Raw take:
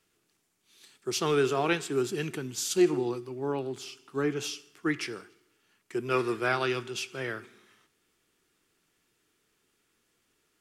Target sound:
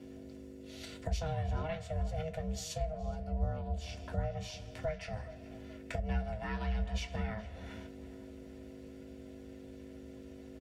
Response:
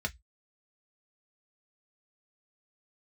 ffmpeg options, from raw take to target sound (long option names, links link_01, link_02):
-filter_complex "[0:a]lowshelf=frequency=430:gain=11.5,aeval=exprs='val(0)+0.00141*(sin(2*PI*50*n/s)+sin(2*PI*2*50*n/s)/2+sin(2*PI*3*50*n/s)/3+sin(2*PI*4*50*n/s)/4+sin(2*PI*5*50*n/s)/5)':channel_layout=same,acompressor=threshold=-47dB:ratio=6,aeval=exprs='val(0)*sin(2*PI*320*n/s)':channel_layout=same,asplit=2[link_01][link_02];[link_02]adelay=421,lowpass=frequency=2300:poles=1,volume=-15.5dB,asplit=2[link_03][link_04];[link_04]adelay=421,lowpass=frequency=2300:poles=1,volume=0.49,asplit=2[link_05][link_06];[link_06]adelay=421,lowpass=frequency=2300:poles=1,volume=0.49,asplit=2[link_07][link_08];[link_08]adelay=421,lowpass=frequency=2300:poles=1,volume=0.49[link_09];[link_01][link_03][link_05][link_07][link_09]amix=inputs=5:normalize=0[link_10];[1:a]atrim=start_sample=2205[link_11];[link_10][link_11]afir=irnorm=-1:irlink=0,volume=7dB"